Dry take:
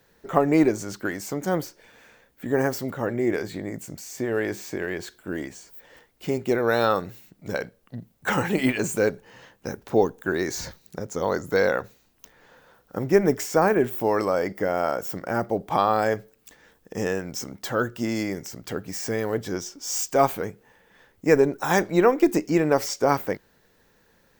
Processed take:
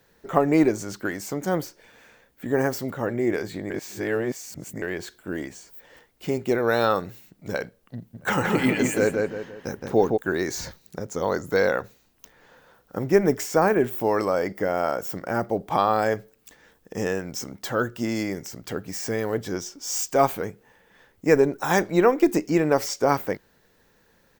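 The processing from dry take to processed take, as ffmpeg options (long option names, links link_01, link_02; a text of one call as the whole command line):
ffmpeg -i in.wav -filter_complex "[0:a]asplit=3[link_01][link_02][link_03];[link_01]afade=type=out:start_time=8.13:duration=0.02[link_04];[link_02]asplit=2[link_05][link_06];[link_06]adelay=169,lowpass=frequency=3200:poles=1,volume=-3dB,asplit=2[link_07][link_08];[link_08]adelay=169,lowpass=frequency=3200:poles=1,volume=0.38,asplit=2[link_09][link_10];[link_10]adelay=169,lowpass=frequency=3200:poles=1,volume=0.38,asplit=2[link_11][link_12];[link_12]adelay=169,lowpass=frequency=3200:poles=1,volume=0.38,asplit=2[link_13][link_14];[link_14]adelay=169,lowpass=frequency=3200:poles=1,volume=0.38[link_15];[link_05][link_07][link_09][link_11][link_13][link_15]amix=inputs=6:normalize=0,afade=type=in:start_time=8.13:duration=0.02,afade=type=out:start_time=10.16:duration=0.02[link_16];[link_03]afade=type=in:start_time=10.16:duration=0.02[link_17];[link_04][link_16][link_17]amix=inputs=3:normalize=0,asplit=3[link_18][link_19][link_20];[link_18]atrim=end=3.702[link_21];[link_19]atrim=start=3.698:end=4.822,asetpts=PTS-STARTPTS,areverse[link_22];[link_20]atrim=start=4.818[link_23];[link_21][link_22]acrossfade=duration=0.004:curve1=hsin:curve2=hsin[link_24];[link_24][link_23]acrossfade=duration=0.004:curve1=hsin:curve2=hsin" out.wav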